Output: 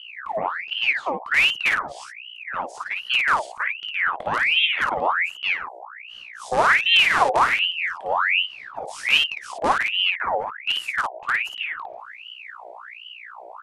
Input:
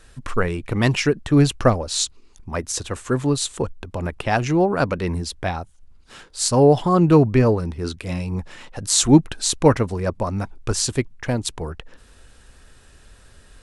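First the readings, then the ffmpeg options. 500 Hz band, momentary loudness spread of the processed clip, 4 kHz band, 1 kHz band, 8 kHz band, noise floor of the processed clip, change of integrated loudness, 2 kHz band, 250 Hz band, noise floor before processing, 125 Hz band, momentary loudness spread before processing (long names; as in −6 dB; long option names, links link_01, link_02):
−9.0 dB, 21 LU, +7.0 dB, +3.5 dB, −17.0 dB, −42 dBFS, −0.5 dB, +11.5 dB, −22.0 dB, −50 dBFS, −26.5 dB, 14 LU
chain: -filter_complex "[0:a]firequalizer=gain_entry='entry(160,0);entry(250,-8);entry(660,-14);entry(4900,-24)':delay=0.05:min_phase=1,dynaudnorm=framelen=190:gausssize=17:maxgain=6dB,asplit=2[link_01][link_02];[link_02]aeval=exprs='(mod(3.35*val(0)+1,2)-1)/3.35':channel_layout=same,volume=-7.5dB[link_03];[link_01][link_03]amix=inputs=2:normalize=0,aresample=22050,aresample=44100,aecho=1:1:22|55:0.299|0.668,aeval=exprs='val(0)+0.0224*(sin(2*PI*60*n/s)+sin(2*PI*2*60*n/s)/2+sin(2*PI*3*60*n/s)/3+sin(2*PI*4*60*n/s)/4+sin(2*PI*5*60*n/s)/5)':channel_layout=same,aeval=exprs='val(0)*sin(2*PI*1800*n/s+1800*0.65/1.3*sin(2*PI*1.3*n/s))':channel_layout=same,volume=-4dB"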